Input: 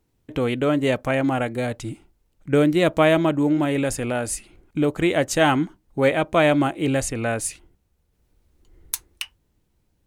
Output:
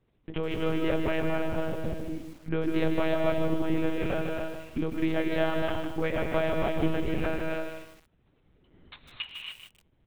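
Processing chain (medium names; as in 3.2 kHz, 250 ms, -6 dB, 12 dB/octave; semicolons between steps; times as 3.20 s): 1.41–1.89 s: median filter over 25 samples; high-pass 63 Hz 24 dB/octave; compression 3:1, threshold -30 dBFS, peak gain reduction 13.5 dB; gated-style reverb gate 310 ms rising, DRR 1.5 dB; monotone LPC vocoder at 8 kHz 160 Hz; speakerphone echo 180 ms, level -24 dB; bit-crushed delay 153 ms, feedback 35%, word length 8-bit, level -7 dB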